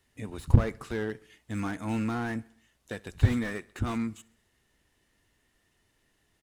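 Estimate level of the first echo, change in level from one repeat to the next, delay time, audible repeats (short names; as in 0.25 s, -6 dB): -23.5 dB, -5.5 dB, 67 ms, 3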